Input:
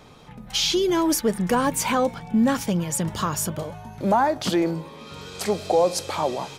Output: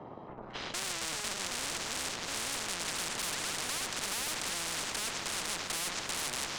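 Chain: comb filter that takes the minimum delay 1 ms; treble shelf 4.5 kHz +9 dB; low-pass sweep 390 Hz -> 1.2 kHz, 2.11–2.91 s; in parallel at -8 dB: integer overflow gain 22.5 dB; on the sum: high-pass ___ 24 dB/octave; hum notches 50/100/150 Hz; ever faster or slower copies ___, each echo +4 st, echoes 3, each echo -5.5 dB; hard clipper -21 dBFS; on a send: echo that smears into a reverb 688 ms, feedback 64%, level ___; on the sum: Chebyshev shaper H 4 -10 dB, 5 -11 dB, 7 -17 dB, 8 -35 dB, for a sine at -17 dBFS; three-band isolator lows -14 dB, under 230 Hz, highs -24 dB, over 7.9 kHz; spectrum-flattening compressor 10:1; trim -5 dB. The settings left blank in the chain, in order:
98 Hz, 422 ms, -15 dB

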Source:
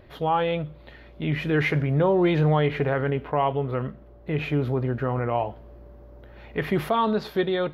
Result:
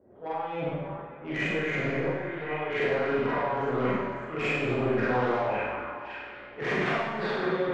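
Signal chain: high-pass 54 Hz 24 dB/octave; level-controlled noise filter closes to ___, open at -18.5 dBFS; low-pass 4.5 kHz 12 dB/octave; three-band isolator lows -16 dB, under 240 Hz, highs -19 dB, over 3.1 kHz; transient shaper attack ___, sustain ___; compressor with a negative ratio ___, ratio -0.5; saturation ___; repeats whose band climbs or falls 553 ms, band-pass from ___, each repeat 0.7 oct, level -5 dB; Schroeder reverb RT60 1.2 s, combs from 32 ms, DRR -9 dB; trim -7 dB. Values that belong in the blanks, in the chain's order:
410 Hz, -10 dB, +10 dB, -28 dBFS, -21 dBFS, 1.3 kHz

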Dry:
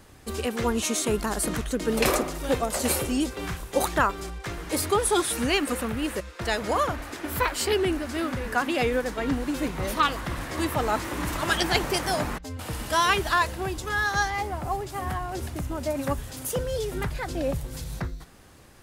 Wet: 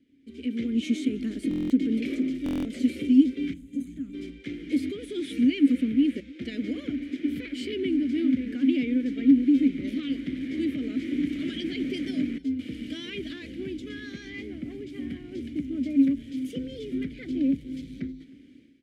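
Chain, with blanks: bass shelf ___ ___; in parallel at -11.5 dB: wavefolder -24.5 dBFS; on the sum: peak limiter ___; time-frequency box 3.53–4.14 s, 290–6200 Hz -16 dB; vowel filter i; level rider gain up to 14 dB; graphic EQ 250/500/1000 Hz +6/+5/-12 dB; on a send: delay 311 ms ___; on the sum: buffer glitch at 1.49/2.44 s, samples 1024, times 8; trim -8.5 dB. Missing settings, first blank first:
97 Hz, +11 dB, -16.5 dBFS, -23 dB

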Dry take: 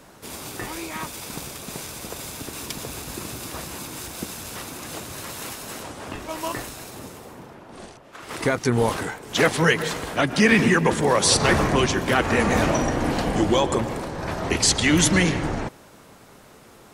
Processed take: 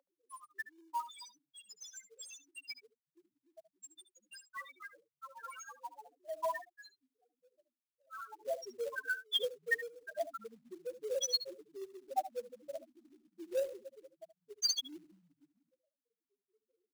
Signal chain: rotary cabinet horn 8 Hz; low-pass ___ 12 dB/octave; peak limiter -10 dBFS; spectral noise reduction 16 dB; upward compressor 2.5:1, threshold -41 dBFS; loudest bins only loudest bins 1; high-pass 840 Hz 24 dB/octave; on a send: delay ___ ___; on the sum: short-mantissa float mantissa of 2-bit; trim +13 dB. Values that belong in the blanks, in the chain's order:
11 kHz, 73 ms, -14 dB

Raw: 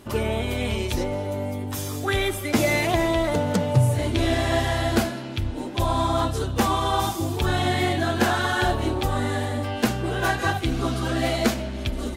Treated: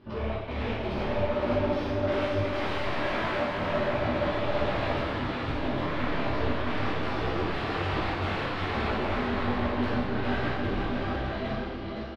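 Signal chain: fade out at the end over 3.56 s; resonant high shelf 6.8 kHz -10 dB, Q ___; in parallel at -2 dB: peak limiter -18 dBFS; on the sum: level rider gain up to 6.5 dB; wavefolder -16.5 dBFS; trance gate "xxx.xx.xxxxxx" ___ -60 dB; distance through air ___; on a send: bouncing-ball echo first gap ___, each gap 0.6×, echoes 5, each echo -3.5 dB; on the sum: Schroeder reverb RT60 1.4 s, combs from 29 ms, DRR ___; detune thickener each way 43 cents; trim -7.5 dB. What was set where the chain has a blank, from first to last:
3, 126 bpm, 400 m, 510 ms, -1.5 dB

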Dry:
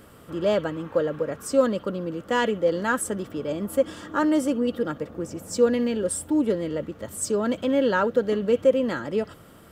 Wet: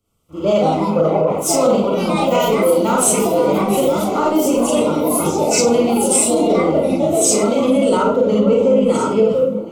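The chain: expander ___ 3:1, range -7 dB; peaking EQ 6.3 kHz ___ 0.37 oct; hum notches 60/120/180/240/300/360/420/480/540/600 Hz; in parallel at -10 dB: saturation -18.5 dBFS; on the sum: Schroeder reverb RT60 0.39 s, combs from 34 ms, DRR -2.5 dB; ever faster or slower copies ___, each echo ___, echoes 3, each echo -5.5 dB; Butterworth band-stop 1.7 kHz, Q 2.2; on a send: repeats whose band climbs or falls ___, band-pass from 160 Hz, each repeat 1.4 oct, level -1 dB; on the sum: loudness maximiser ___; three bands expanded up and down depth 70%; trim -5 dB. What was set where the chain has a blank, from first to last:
-43 dBFS, +8 dB, 259 ms, +4 st, 344 ms, +9.5 dB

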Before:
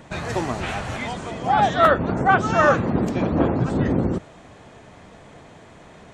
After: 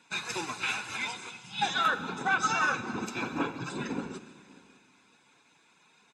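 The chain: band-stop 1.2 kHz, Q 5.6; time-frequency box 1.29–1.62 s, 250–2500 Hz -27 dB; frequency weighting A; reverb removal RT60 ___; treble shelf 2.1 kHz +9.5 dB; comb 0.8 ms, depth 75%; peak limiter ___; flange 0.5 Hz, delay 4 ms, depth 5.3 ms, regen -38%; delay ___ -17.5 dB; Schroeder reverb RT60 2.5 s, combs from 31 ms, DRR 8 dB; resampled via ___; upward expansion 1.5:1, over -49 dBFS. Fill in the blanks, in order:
0.7 s, -14 dBFS, 589 ms, 32 kHz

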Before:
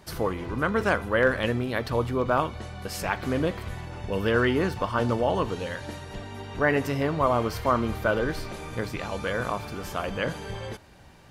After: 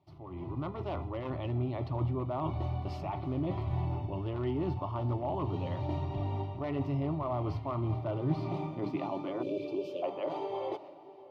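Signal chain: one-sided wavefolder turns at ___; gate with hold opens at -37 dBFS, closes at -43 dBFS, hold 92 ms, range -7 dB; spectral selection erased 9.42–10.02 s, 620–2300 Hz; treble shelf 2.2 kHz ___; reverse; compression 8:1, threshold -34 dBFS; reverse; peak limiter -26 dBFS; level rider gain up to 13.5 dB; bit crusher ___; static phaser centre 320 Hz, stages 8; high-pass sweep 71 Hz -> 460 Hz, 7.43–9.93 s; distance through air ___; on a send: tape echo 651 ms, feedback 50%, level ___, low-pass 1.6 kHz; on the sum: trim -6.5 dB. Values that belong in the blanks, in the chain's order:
-17 dBFS, -6 dB, 11-bit, 320 m, -17 dB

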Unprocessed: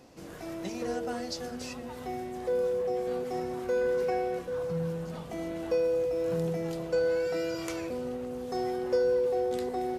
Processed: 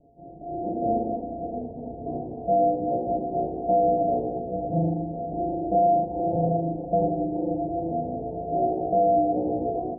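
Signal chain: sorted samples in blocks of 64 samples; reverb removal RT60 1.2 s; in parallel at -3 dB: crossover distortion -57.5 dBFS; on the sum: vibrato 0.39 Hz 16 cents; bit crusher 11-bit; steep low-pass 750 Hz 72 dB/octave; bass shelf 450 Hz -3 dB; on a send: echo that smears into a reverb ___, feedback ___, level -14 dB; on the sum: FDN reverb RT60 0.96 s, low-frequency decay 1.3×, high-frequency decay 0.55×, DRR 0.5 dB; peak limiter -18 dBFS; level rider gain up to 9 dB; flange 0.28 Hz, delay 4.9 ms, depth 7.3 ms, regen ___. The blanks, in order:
567 ms, 68%, -85%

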